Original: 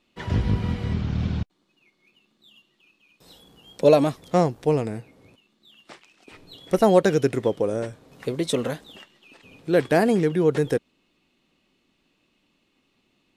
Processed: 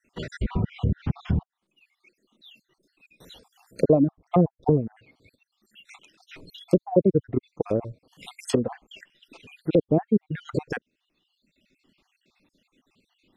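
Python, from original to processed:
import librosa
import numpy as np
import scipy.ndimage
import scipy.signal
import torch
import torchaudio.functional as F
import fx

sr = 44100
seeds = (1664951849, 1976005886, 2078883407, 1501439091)

y = fx.spec_dropout(x, sr, seeds[0], share_pct=58)
y = fx.dereverb_blind(y, sr, rt60_s=1.2)
y = fx.env_lowpass_down(y, sr, base_hz=370.0, full_db=-22.5)
y = y * librosa.db_to_amplitude(5.0)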